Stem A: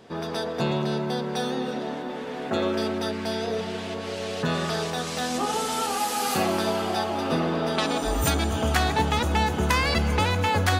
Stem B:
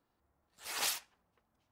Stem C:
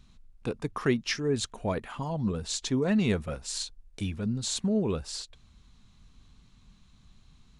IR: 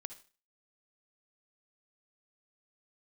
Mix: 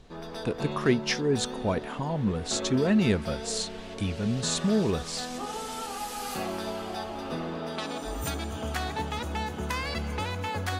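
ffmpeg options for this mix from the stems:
-filter_complex "[0:a]volume=-12dB,asplit=2[link_01][link_02];[link_02]volume=-3dB[link_03];[2:a]volume=2dB[link_04];[3:a]atrim=start_sample=2205[link_05];[link_03][link_05]afir=irnorm=-1:irlink=0[link_06];[link_01][link_04][link_06]amix=inputs=3:normalize=0"

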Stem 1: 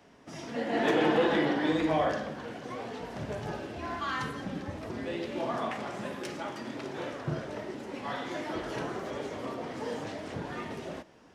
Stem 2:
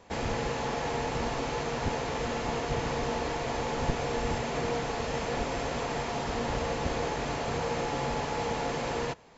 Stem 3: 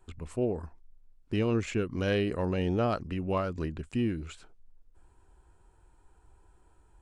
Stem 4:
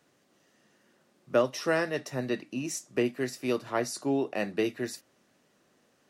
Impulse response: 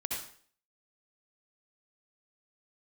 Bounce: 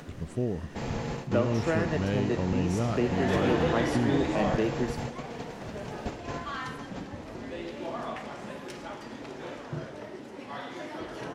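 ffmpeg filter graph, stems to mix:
-filter_complex "[0:a]adelay=2450,volume=-3dB[link_01];[1:a]adelay=650,volume=-6dB,asplit=2[link_02][link_03];[link_03]volume=-16dB[link_04];[2:a]volume=-2.5dB,asplit=2[link_05][link_06];[3:a]highshelf=frequency=4400:gain=-10.5,acompressor=mode=upward:threshold=-34dB:ratio=2.5,volume=-1.5dB,asplit=2[link_07][link_08];[link_08]volume=-12.5dB[link_09];[link_06]apad=whole_len=442074[link_10];[link_02][link_10]sidechaingate=range=-33dB:threshold=-58dB:ratio=16:detection=peak[link_11];[link_11][link_05][link_07]amix=inputs=3:normalize=0,equalizer=frequency=150:width=0.8:gain=10,acompressor=threshold=-26dB:ratio=2,volume=0dB[link_12];[4:a]atrim=start_sample=2205[link_13];[link_04][link_09]amix=inputs=2:normalize=0[link_14];[link_14][link_13]afir=irnorm=-1:irlink=0[link_15];[link_01][link_12][link_15]amix=inputs=3:normalize=0"

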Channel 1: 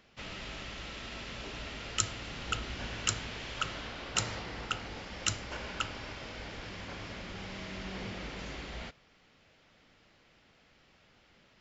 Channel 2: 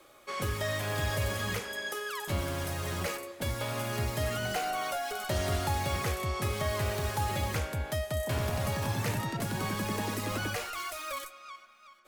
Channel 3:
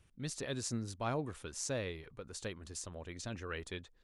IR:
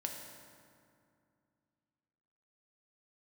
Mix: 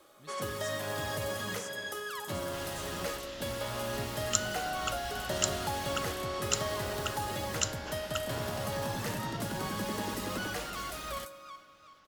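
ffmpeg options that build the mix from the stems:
-filter_complex "[0:a]highshelf=frequency=4600:gain=8,adelay=2350,volume=-3.5dB[link_01];[1:a]highpass=140,volume=-5dB,asplit=2[link_02][link_03];[link_03]volume=-5.5dB[link_04];[2:a]bass=frequency=250:gain=1,treble=frequency=4000:gain=12,volume=-16.5dB[link_05];[3:a]atrim=start_sample=2205[link_06];[link_04][link_06]afir=irnorm=-1:irlink=0[link_07];[link_01][link_02][link_05][link_07]amix=inputs=4:normalize=0,equalizer=frequency=2300:width_type=o:width=0.29:gain=-7"

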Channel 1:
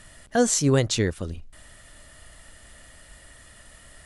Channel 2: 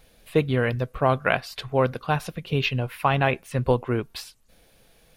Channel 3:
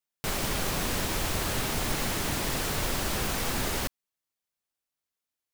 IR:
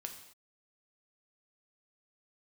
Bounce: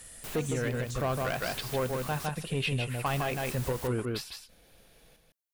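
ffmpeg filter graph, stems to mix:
-filter_complex "[0:a]highshelf=frequency=5900:gain=12,volume=-8dB[link_01];[1:a]asoftclip=type=tanh:threshold=-16.5dB,volume=-2.5dB,asplit=2[link_02][link_03];[link_03]volume=-4.5dB[link_04];[2:a]volume=-9.5dB,asplit=3[link_05][link_06][link_07];[link_05]atrim=end=2.26,asetpts=PTS-STARTPTS,afade=type=out:start_time=2.256:duration=0.004:curve=hsin[link_08];[link_06]atrim=start=2.26:end=3.06,asetpts=PTS-STARTPTS,volume=0[link_09];[link_07]atrim=start=3.06,asetpts=PTS-STARTPTS,afade=type=in:duration=0.004:curve=hsin[link_10];[link_08][link_09][link_10]concat=n=3:v=0:a=1[link_11];[link_01][link_11]amix=inputs=2:normalize=0,highshelf=frequency=8600:gain=9.5,alimiter=level_in=5dB:limit=-24dB:level=0:latency=1:release=324,volume=-5dB,volume=0dB[link_12];[link_04]aecho=0:1:157:1[link_13];[link_02][link_12][link_13]amix=inputs=3:normalize=0,alimiter=limit=-22dB:level=0:latency=1:release=191"

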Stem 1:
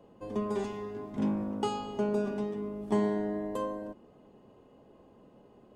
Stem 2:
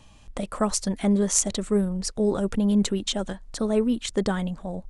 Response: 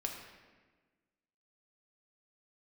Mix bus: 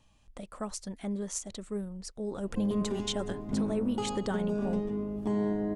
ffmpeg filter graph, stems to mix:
-filter_complex "[0:a]lowshelf=frequency=210:gain=11.5,adelay=2350,volume=-1.5dB[link_01];[1:a]volume=-4dB,afade=type=in:start_time=2.32:duration=0.41:silence=0.354813[link_02];[link_01][link_02]amix=inputs=2:normalize=0,alimiter=limit=-22dB:level=0:latency=1:release=128"

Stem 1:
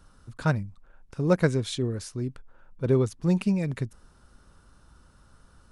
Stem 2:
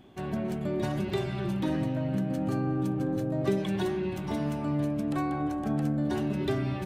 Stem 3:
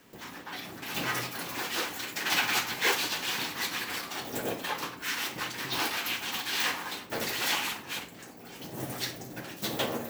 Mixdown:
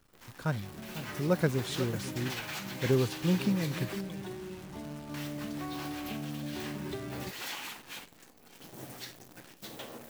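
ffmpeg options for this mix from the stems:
ffmpeg -i stem1.wav -i stem2.wav -i stem3.wav -filter_complex "[0:a]highpass=41,volume=-7.5dB,asplit=2[link_01][link_02];[link_02]volume=-14dB[link_03];[1:a]bandreject=frequency=131.2:width_type=h:width=4,bandreject=frequency=262.4:width_type=h:width=4,adelay=450,volume=-5.5dB,afade=type=in:start_time=5.09:duration=0.39:silence=0.354813[link_04];[2:a]volume=-11dB,asplit=3[link_05][link_06][link_07];[link_05]atrim=end=4.01,asetpts=PTS-STARTPTS,afade=type=out:start_time=4.006:duration=0.004:curve=hsin[link_08];[link_06]atrim=start=4.01:end=5.14,asetpts=PTS-STARTPTS,volume=0[link_09];[link_07]atrim=start=5.14,asetpts=PTS-STARTPTS,afade=type=in:duration=0.004:curve=hsin[link_10];[link_08][link_09][link_10]concat=n=3:v=0:a=1[link_11];[link_04][link_11]amix=inputs=2:normalize=0,acompressor=threshold=-38dB:ratio=6,volume=0dB[link_12];[link_03]aecho=0:1:497:1[link_13];[link_01][link_12][link_13]amix=inputs=3:normalize=0,dynaudnorm=framelen=120:gausssize=21:maxgain=3dB,acrusher=bits=9:dc=4:mix=0:aa=0.000001" out.wav

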